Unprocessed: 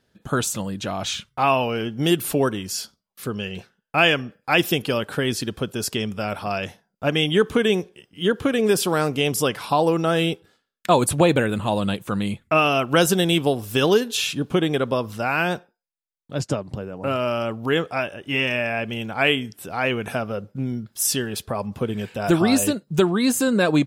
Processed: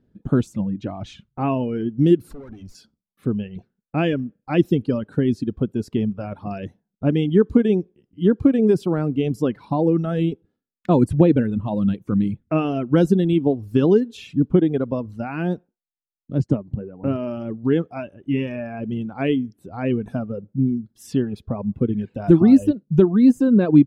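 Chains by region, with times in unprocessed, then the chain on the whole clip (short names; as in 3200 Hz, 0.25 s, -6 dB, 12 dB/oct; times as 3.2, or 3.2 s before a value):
2.33–2.75 high shelf 3400 Hz +8.5 dB + notches 50/100/150/200 Hz + tube stage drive 33 dB, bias 0.8
whole clip: RIAA curve playback; reverb removal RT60 1.8 s; bell 270 Hz +12.5 dB 1.8 oct; gain -10 dB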